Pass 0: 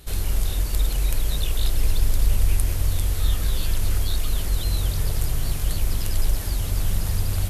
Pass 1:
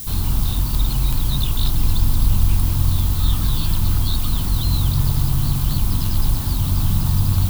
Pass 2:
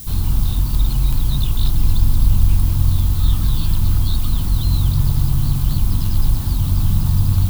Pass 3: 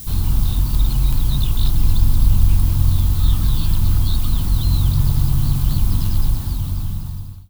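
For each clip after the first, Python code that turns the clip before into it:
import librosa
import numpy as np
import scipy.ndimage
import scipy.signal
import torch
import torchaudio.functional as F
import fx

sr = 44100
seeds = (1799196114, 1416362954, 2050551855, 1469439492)

y1 = fx.graphic_eq(x, sr, hz=(125, 250, 500, 1000, 2000, 4000, 8000), db=(11, 9, -11, 11, -8, 8, -12))
y1 = fx.dmg_noise_colour(y1, sr, seeds[0], colour='violet', level_db=-33.0)
y1 = y1 * 10.0 ** (1.5 / 20.0)
y2 = fx.low_shelf(y1, sr, hz=220.0, db=6.0)
y2 = y2 * 10.0 ** (-3.0 / 20.0)
y3 = fx.fade_out_tail(y2, sr, length_s=1.47)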